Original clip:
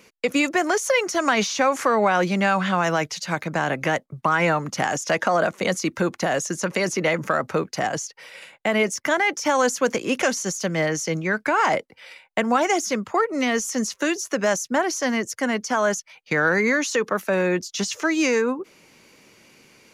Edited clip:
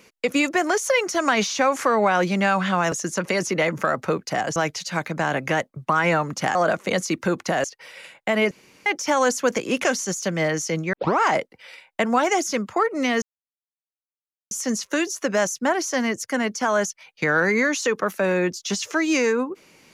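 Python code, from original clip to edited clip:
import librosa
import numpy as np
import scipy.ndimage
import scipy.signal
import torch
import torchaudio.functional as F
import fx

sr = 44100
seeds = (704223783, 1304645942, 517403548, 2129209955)

y = fx.edit(x, sr, fx.cut(start_s=4.91, length_s=0.38),
    fx.move(start_s=6.38, length_s=1.64, to_s=2.92),
    fx.room_tone_fill(start_s=8.89, length_s=0.35),
    fx.tape_start(start_s=11.31, length_s=0.27),
    fx.insert_silence(at_s=13.6, length_s=1.29), tone=tone)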